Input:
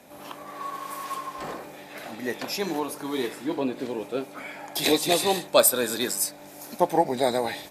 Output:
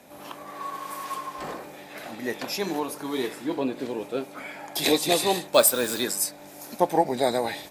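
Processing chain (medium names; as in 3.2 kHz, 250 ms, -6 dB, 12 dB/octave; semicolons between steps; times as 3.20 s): 5.54–6.01 s: word length cut 6-bit, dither none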